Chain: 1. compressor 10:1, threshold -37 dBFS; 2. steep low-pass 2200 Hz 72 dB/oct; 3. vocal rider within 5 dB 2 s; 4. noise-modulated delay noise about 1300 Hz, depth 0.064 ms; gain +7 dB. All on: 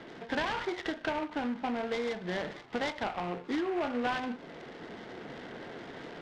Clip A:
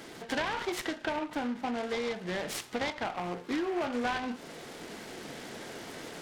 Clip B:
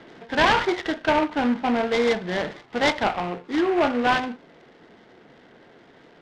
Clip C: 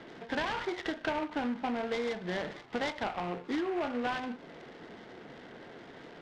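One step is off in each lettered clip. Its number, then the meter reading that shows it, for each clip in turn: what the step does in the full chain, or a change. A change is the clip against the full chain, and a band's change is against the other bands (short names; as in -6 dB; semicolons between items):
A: 2, 8 kHz band +11.0 dB; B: 1, mean gain reduction 6.0 dB; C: 3, momentary loudness spread change +3 LU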